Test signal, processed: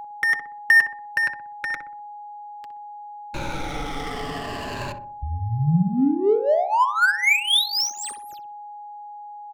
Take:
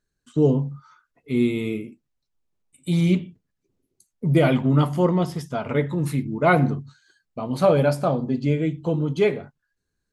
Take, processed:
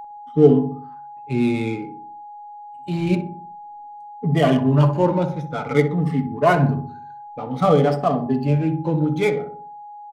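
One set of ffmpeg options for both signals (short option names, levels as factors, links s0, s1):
-filter_complex "[0:a]afftfilt=real='re*pow(10,14/40*sin(2*PI*(1.4*log(max(b,1)*sr/1024/100)/log(2)-(-0.54)*(pts-256)/sr)))':imag='im*pow(10,14/40*sin(2*PI*(1.4*log(max(b,1)*sr/1024/100)/log(2)-(-0.54)*(pts-256)/sr)))':win_size=1024:overlap=0.75,lowshelf=f=250:g=-2.5,aecho=1:1:6.9:0.36,acrossover=split=250|650|3900[s0][s1][s2][s3];[s3]asoftclip=type=tanh:threshold=0.0668[s4];[s0][s1][s2][s4]amix=inputs=4:normalize=0,adynamicsmooth=sensitivity=4.5:basefreq=1800,aeval=exprs='val(0)+0.0224*sin(2*PI*830*n/s)':c=same,asplit=2[s5][s6];[s6]adelay=62,lowpass=f=1000:p=1,volume=0.473,asplit=2[s7][s8];[s8]adelay=62,lowpass=f=1000:p=1,volume=0.51,asplit=2[s9][s10];[s10]adelay=62,lowpass=f=1000:p=1,volume=0.51,asplit=2[s11][s12];[s12]adelay=62,lowpass=f=1000:p=1,volume=0.51,asplit=2[s13][s14];[s14]adelay=62,lowpass=f=1000:p=1,volume=0.51,asplit=2[s15][s16];[s16]adelay=62,lowpass=f=1000:p=1,volume=0.51[s17];[s5][s7][s9][s11][s13][s15][s17]amix=inputs=7:normalize=0"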